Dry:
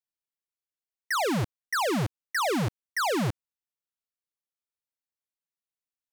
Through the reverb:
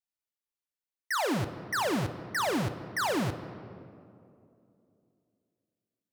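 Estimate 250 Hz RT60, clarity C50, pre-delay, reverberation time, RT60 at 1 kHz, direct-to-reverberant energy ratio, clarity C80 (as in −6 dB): 3.3 s, 11.0 dB, 3 ms, 2.7 s, 2.3 s, 8.0 dB, 12.0 dB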